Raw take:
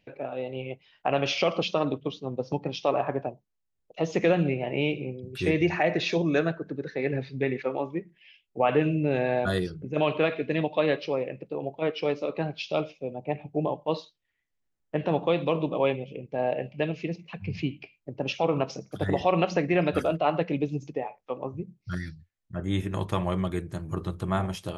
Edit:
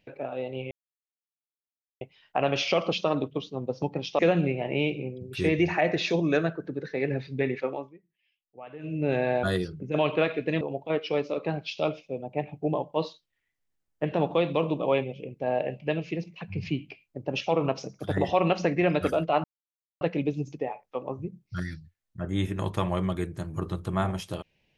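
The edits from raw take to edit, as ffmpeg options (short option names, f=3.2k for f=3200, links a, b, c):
-filter_complex "[0:a]asplit=7[a][b][c][d][e][f][g];[a]atrim=end=0.71,asetpts=PTS-STARTPTS,afade=t=out:st=0.706:d=0.004:c=hsin,apad=pad_dur=1.3[h];[b]atrim=start=0.71:end=2.892,asetpts=PTS-STARTPTS,afade=t=in:d=0.004:c=hsin[i];[c]atrim=start=4.208:end=7.96,asetpts=PTS-STARTPTS,afade=t=out:st=3.452:d=0.3:silence=0.0944061[j];[d]atrim=start=7.96:end=8.81,asetpts=PTS-STARTPTS,volume=-20.5dB[k];[e]atrim=start=8.81:end=10.632,asetpts=PTS-STARTPTS,afade=t=in:d=0.3:silence=0.0944061[l];[f]atrim=start=11.528:end=20.36,asetpts=PTS-STARTPTS,afade=t=out:st=8.828:d=0.004:c=hsin,apad=pad_dur=0.57[m];[g]atrim=start=20.36,asetpts=PTS-STARTPTS,afade=t=in:d=0.004:c=hsin[n];[h][i]concat=n=2:v=0:a=1[o];[j][k][l]concat=n=3:v=0:a=1[p];[o][p]acrossfade=d=0.004:c1=hsin:c2=hsin[q];[m][n]concat=n=2:v=0:a=1[r];[q][r]acrossfade=d=0.004:c1=hsin:c2=hsin"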